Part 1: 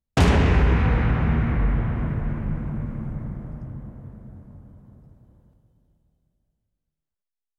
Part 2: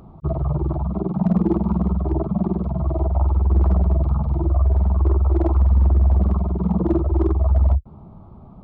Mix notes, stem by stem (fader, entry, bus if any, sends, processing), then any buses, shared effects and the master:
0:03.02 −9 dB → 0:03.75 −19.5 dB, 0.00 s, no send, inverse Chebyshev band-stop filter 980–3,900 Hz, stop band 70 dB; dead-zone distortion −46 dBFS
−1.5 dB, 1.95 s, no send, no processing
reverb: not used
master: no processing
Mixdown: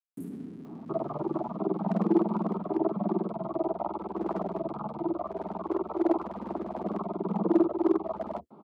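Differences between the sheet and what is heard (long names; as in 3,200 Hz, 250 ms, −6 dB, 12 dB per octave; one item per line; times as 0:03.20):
stem 2: entry 1.95 s → 0.65 s
master: extra high-pass filter 240 Hz 24 dB per octave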